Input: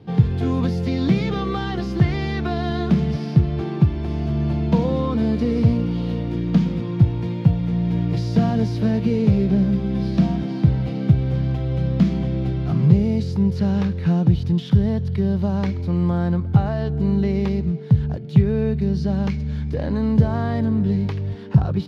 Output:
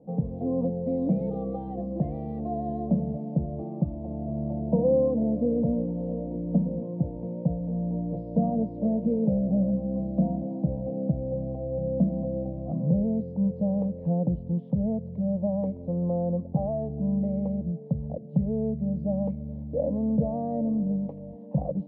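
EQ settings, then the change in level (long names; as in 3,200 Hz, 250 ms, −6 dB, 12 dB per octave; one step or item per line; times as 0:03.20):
low-pass with resonance 540 Hz, resonance Q 4.9
phaser with its sweep stopped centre 390 Hz, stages 6
−6.5 dB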